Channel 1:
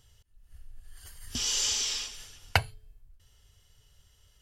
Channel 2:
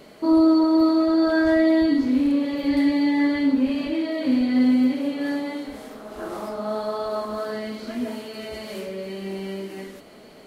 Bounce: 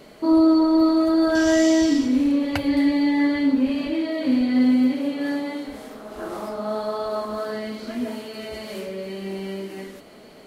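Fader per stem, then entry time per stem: −4.5, +0.5 decibels; 0.00, 0.00 seconds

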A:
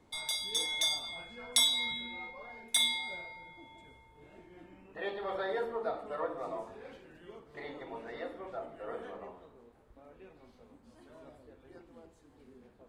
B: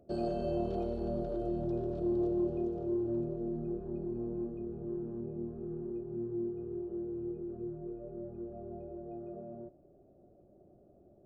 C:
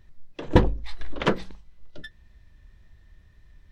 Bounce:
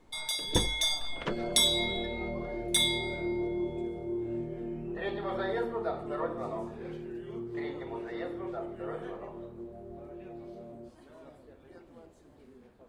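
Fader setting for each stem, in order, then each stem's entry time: +1.5, −1.5, −12.0 decibels; 0.00, 1.20, 0.00 seconds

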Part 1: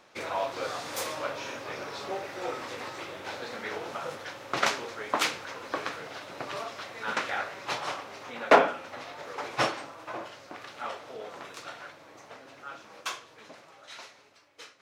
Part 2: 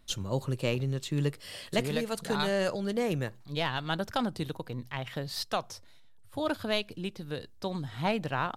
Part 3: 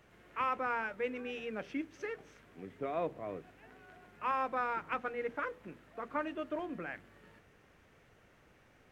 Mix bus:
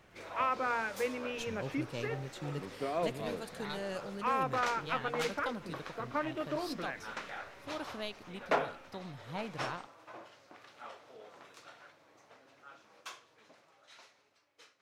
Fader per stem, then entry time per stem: −12.0, −11.0, +1.5 decibels; 0.00, 1.30, 0.00 seconds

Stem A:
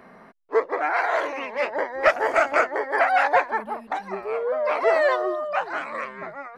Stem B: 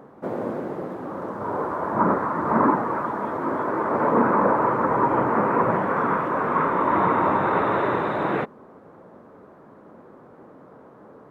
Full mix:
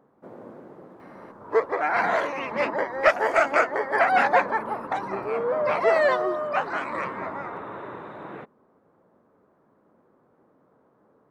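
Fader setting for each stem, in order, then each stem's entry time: −0.5, −15.0 decibels; 1.00, 0.00 seconds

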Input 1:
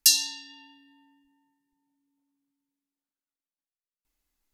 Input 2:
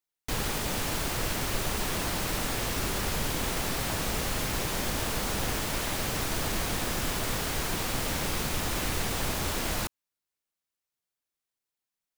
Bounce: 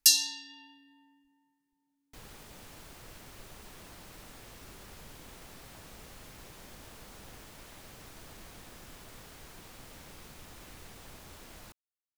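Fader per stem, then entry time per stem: −2.0, −20.0 decibels; 0.00, 1.85 seconds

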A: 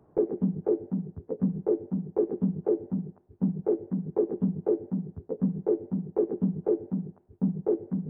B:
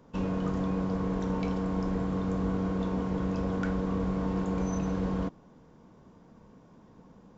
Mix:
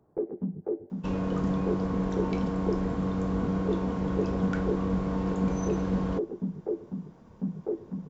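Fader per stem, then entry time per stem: −5.5, +1.0 decibels; 0.00, 0.90 seconds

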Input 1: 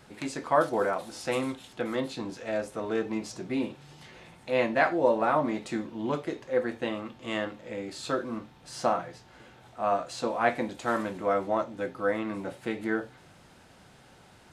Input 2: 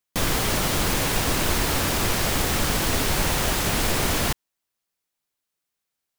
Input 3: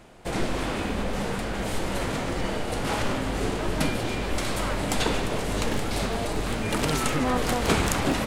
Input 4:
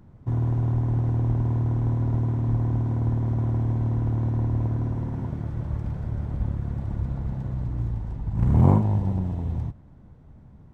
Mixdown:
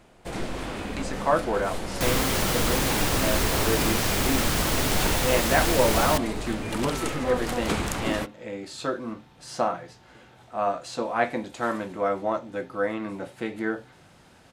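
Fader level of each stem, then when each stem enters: +1.0 dB, −2.0 dB, −4.5 dB, muted; 0.75 s, 1.85 s, 0.00 s, muted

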